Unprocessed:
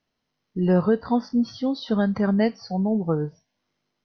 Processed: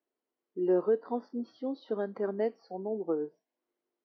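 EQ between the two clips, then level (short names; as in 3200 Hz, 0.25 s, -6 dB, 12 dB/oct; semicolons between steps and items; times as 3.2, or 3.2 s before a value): ladder high-pass 310 Hz, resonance 55%; air absorption 110 m; high shelf 2200 Hz -9.5 dB; 0.0 dB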